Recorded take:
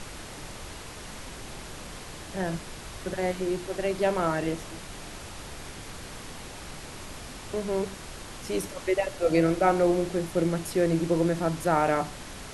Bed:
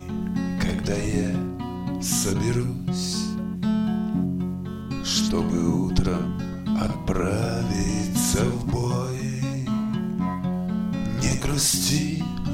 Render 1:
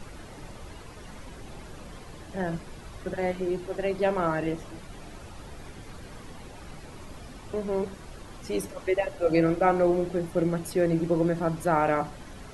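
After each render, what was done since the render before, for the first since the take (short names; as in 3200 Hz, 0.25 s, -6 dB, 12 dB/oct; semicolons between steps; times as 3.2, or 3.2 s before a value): denoiser 10 dB, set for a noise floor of -42 dBFS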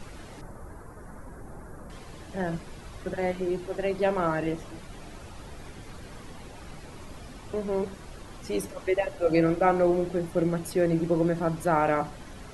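0.41–1.9 EQ curve 1600 Hz 0 dB, 2900 Hz -24 dB, 11000 Hz -1 dB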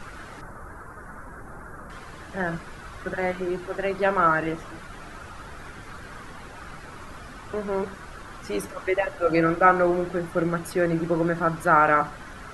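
bell 1400 Hz +12.5 dB 0.95 oct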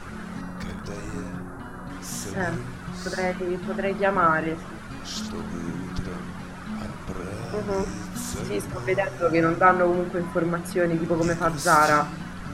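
add bed -10 dB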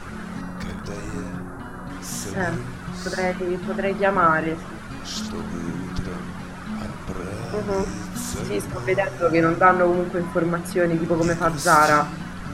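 gain +2.5 dB; limiter -3 dBFS, peak gain reduction 1 dB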